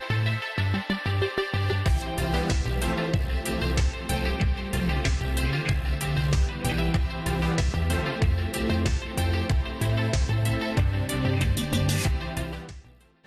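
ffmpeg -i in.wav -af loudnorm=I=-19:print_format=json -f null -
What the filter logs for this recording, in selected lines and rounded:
"input_i" : "-26.4",
"input_tp" : "-12.5",
"input_lra" : "1.2",
"input_thresh" : "-36.6",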